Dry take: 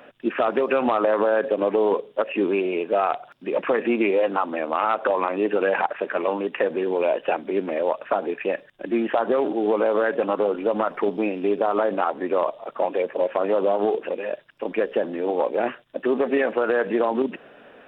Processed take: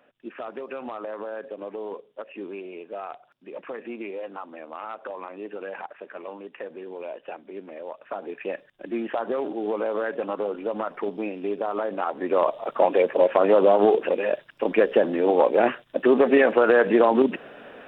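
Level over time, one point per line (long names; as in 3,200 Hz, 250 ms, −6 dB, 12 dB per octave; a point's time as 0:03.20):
0:07.88 −14 dB
0:08.45 −6 dB
0:11.93 −6 dB
0:12.60 +4 dB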